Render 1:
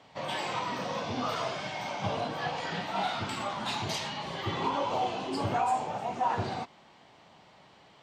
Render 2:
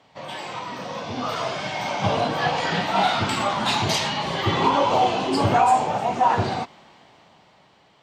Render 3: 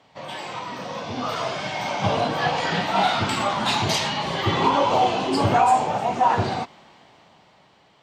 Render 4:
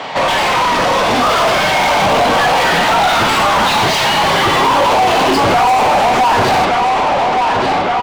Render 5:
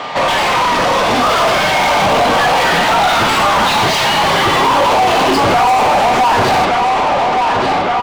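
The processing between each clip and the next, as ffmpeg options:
ffmpeg -i in.wav -af "dynaudnorm=framelen=350:gausssize=9:maxgain=11dB" out.wav
ffmpeg -i in.wav -af anull out.wav
ffmpeg -i in.wav -filter_complex "[0:a]alimiter=limit=-15.5dB:level=0:latency=1:release=109,asplit=2[link_01][link_02];[link_02]adelay=1172,lowpass=frequency=4400:poles=1,volume=-13.5dB,asplit=2[link_03][link_04];[link_04]adelay=1172,lowpass=frequency=4400:poles=1,volume=0.52,asplit=2[link_05][link_06];[link_06]adelay=1172,lowpass=frequency=4400:poles=1,volume=0.52,asplit=2[link_07][link_08];[link_08]adelay=1172,lowpass=frequency=4400:poles=1,volume=0.52,asplit=2[link_09][link_10];[link_10]adelay=1172,lowpass=frequency=4400:poles=1,volume=0.52[link_11];[link_01][link_03][link_05][link_07][link_09][link_11]amix=inputs=6:normalize=0,asplit=2[link_12][link_13];[link_13]highpass=frequency=720:poles=1,volume=34dB,asoftclip=type=tanh:threshold=-14dB[link_14];[link_12][link_14]amix=inputs=2:normalize=0,lowpass=frequency=2400:poles=1,volume=-6dB,volume=8.5dB" out.wav
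ffmpeg -i in.wav -af "aeval=exprs='val(0)+0.0398*sin(2*PI*1200*n/s)':channel_layout=same" out.wav

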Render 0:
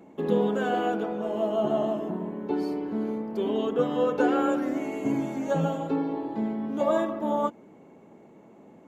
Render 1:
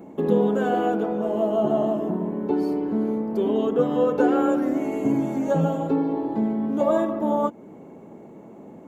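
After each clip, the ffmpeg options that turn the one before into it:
ffmpeg -i in.wav -filter_complex "[0:a]equalizer=frequency=3300:width=0.39:gain=-7.5,asplit=2[link_01][link_02];[link_02]acompressor=threshold=-35dB:ratio=6,volume=0dB[link_03];[link_01][link_03]amix=inputs=2:normalize=0,volume=3dB" out.wav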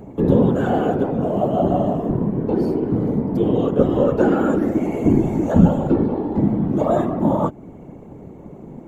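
ffmpeg -i in.wav -af "equalizer=frequency=120:width=1:gain=13.5,afftfilt=real='hypot(re,im)*cos(2*PI*random(0))':imag='hypot(re,im)*sin(2*PI*random(1))':win_size=512:overlap=0.75,volume=7dB" out.wav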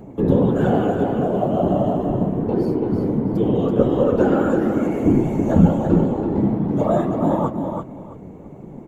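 ffmpeg -i in.wav -af "aecho=1:1:332|664|996:0.501|0.105|0.0221,flanger=delay=5.2:depth=7.1:regen=-61:speed=1.5:shape=triangular,volume=3dB" out.wav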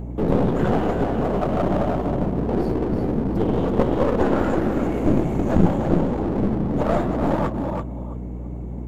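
ffmpeg -i in.wav -af "aeval=exprs='clip(val(0),-1,0.0531)':channel_layout=same,aeval=exprs='val(0)+0.0316*(sin(2*PI*60*n/s)+sin(2*PI*2*60*n/s)/2+sin(2*PI*3*60*n/s)/3+sin(2*PI*4*60*n/s)/4+sin(2*PI*5*60*n/s)/5)':channel_layout=same" out.wav

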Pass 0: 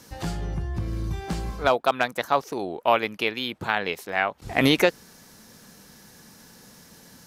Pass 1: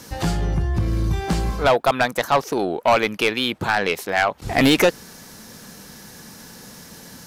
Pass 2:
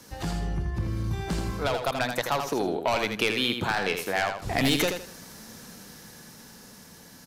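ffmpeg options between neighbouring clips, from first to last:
ffmpeg -i in.wav -af "asoftclip=type=tanh:threshold=-18dB,volume=8.5dB" out.wav
ffmpeg -i in.wav -filter_complex "[0:a]acrossover=split=150|3000[link_01][link_02][link_03];[link_02]acompressor=threshold=-20dB:ratio=6[link_04];[link_01][link_04][link_03]amix=inputs=3:normalize=0,asplit=2[link_05][link_06];[link_06]aecho=0:1:81|162|243:0.473|0.128|0.0345[link_07];[link_05][link_07]amix=inputs=2:normalize=0,dynaudnorm=framelen=270:gausssize=13:maxgain=11.5dB,volume=-9dB" out.wav

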